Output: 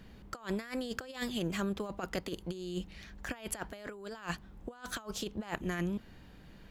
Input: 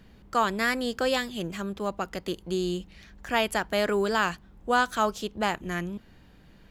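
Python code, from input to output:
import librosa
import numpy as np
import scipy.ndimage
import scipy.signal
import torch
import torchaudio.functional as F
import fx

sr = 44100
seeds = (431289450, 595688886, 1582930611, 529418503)

y = fx.over_compress(x, sr, threshold_db=-32.0, ratio=-0.5)
y = y * 10.0 ** (-5.0 / 20.0)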